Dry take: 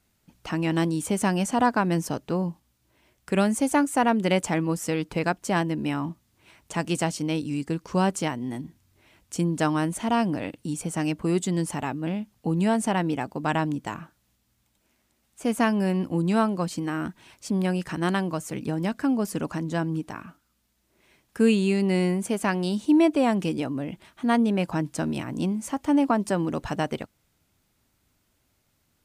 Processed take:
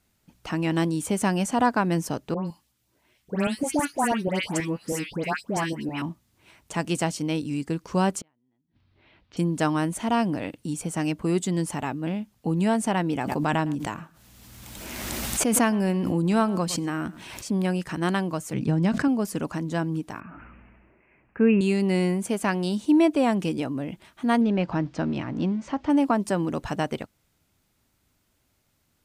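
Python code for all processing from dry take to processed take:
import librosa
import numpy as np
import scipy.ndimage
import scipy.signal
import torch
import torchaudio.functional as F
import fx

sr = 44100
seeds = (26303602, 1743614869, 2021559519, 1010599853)

y = fx.chain(x, sr, fx.low_shelf(hz=110.0, db=-9.5),
    fx.filter_lfo_notch(shape='saw_up', hz=6.2, low_hz=210.0, high_hz=1800.0, q=1.2),
    fx.dispersion(late='highs', ms=127.0, hz=1900.0), at=(2.34, 6.02))
y = fx.chain(y, sr, fx.steep_lowpass(hz=4300.0, slope=36),
    fx.gate_flip(shuts_db=-27.0, range_db=-41), at=(8.21, 9.37))
y = fx.chain(y, sr, fx.echo_single(ms=110, db=-21.0),
    fx.pre_swell(db_per_s=27.0), at=(13.13, 17.48))
y = fx.chain(y, sr, fx.lowpass(hz=7600.0, slope=12),
    fx.peak_eq(hz=140.0, db=8.0, octaves=1.3),
    fx.sustainer(db_per_s=69.0), at=(18.53, 19.08))
y = fx.chain(y, sr, fx.steep_lowpass(hz=2700.0, slope=96),
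    fx.sustainer(db_per_s=28.0), at=(20.2, 21.61))
y = fx.chain(y, sr, fx.law_mismatch(coded='mu'),
    fx.lowpass(hz=5700.0, slope=24),
    fx.high_shelf(hz=4500.0, db=-8.5), at=(24.41, 25.9))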